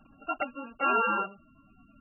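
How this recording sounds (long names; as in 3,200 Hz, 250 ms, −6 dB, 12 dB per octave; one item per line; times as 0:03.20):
a buzz of ramps at a fixed pitch in blocks of 32 samples
MP3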